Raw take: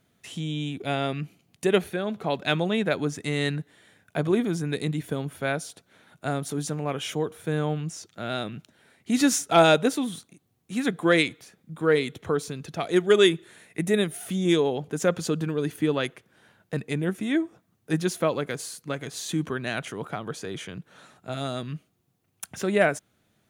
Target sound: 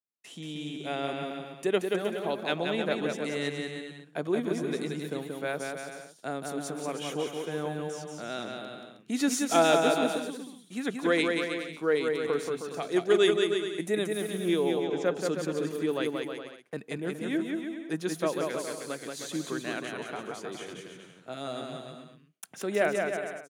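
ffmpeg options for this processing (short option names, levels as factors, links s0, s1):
-filter_complex "[0:a]asettb=1/sr,asplit=3[s0][s1][s2];[s0]atrim=end=14.324[s3];[s1]atrim=start=14.32:end=15.06,asetpts=PTS-STARTPTS,afade=t=in:d=0.004:c=qsin,afade=t=out:st=0.736:d=0.004:c=qsin,lowpass=4200[s4];[s2]atrim=start=15.056[s5];[s3][s4]acrossfade=d=0.004:c1=hsin:c2=qsin[s6];[s6][s5]acrossfade=d=0.004:c1=qsin:c2=hsin,agate=range=0.0224:threshold=0.00501:ratio=3:detection=peak,highpass=280,lowshelf=f=480:g=4.5,aecho=1:1:180|315|416.2|492.2|549.1:0.631|0.398|0.251|0.158|0.1,volume=0.473"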